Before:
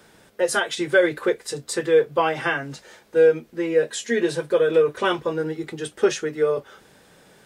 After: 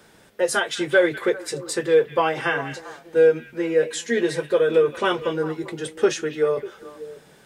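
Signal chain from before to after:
echo through a band-pass that steps 198 ms, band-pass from 2,500 Hz, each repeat −1.4 octaves, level −9 dB

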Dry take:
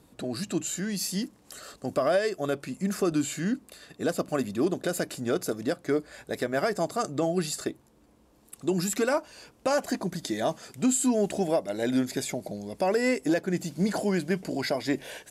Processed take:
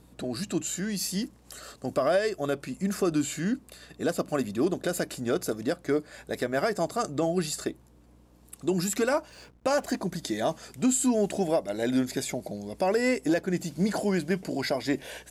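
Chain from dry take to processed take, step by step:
mains hum 60 Hz, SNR 30 dB
0:09.29–0:09.97: slack as between gear wheels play −51 dBFS

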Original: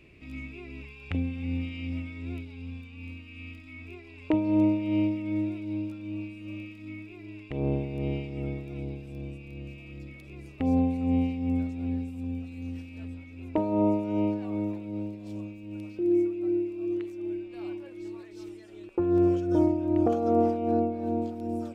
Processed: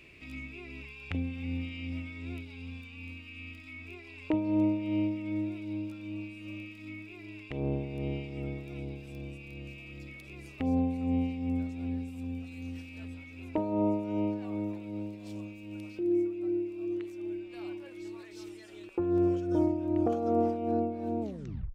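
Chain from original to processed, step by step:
turntable brake at the end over 0.53 s
one half of a high-frequency compander encoder only
level −4 dB

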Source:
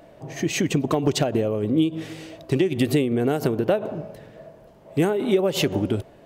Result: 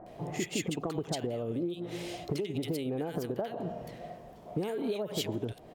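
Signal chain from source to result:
downward compressor 6 to 1, threshold −31 dBFS, peak gain reduction 15.5 dB
multiband delay without the direct sound lows, highs 70 ms, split 1,300 Hz
wrong playback speed 44.1 kHz file played as 48 kHz

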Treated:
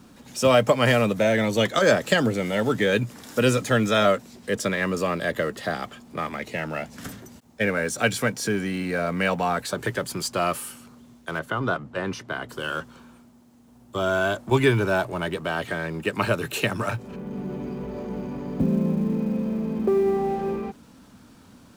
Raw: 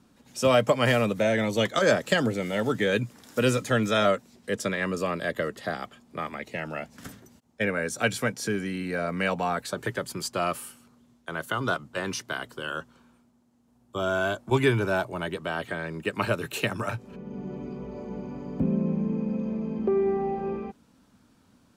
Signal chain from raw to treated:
mu-law and A-law mismatch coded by mu
0:11.39–0:12.49: low-pass filter 1,700 Hz 6 dB per octave
level +2.5 dB

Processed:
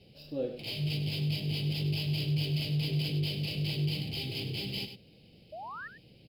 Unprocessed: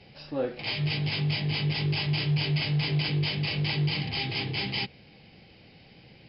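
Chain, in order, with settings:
running median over 5 samples
flat-topped bell 1,300 Hz −15 dB
sound drawn into the spectrogram rise, 0:05.52–0:05.88, 590–1,900 Hz −38 dBFS
single-tap delay 100 ms −10.5 dB
level −4 dB

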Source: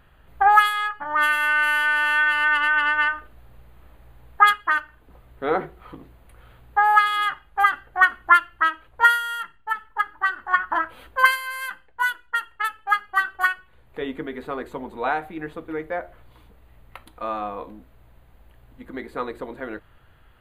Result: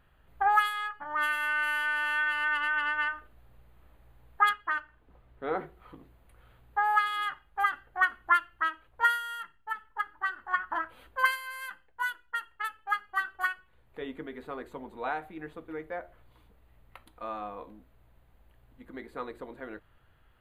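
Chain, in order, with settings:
0:04.49–0:05.57: high-shelf EQ 6,600 Hz −11.5 dB
level −9 dB

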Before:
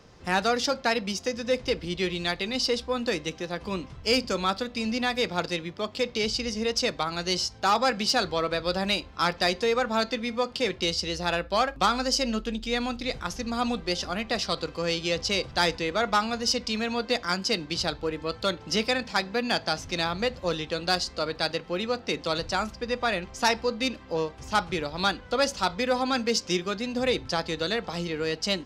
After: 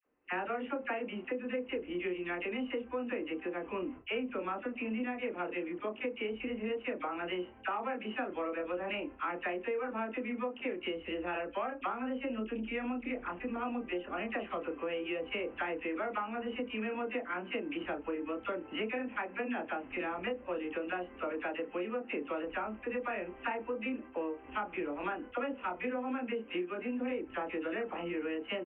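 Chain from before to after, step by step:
noise gate with hold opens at −33 dBFS
Butterworth low-pass 2,900 Hz 96 dB per octave
low shelf with overshoot 200 Hz −10 dB, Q 3
double-tracking delay 28 ms −5 dB
all-pass dispersion lows, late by 57 ms, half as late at 1,100 Hz
downward compressor, threshold −28 dBFS, peak gain reduction 11.5 dB
level −5 dB

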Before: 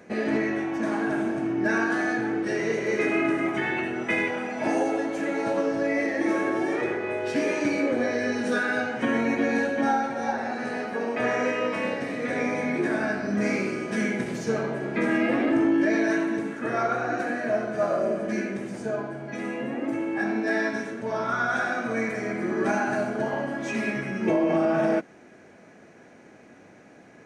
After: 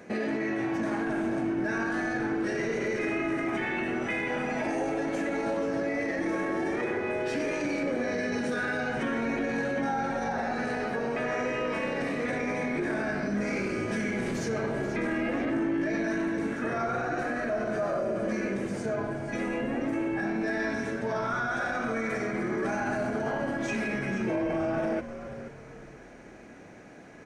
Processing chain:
brickwall limiter −24 dBFS, peak gain reduction 9.5 dB
echo with shifted repeats 481 ms, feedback 35%, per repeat −96 Hz, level −11.5 dB
level +1.5 dB

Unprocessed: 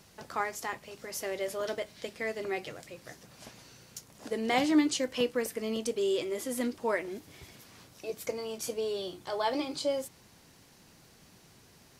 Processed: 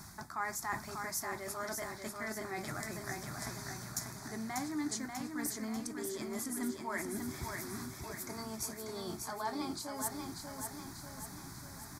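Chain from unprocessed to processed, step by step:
reversed playback
downward compressor 6 to 1, threshold −42 dBFS, peak gain reduction 20.5 dB
reversed playback
phaser with its sweep stopped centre 1,200 Hz, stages 4
repeating echo 591 ms, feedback 53%, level −5 dB
level +10.5 dB

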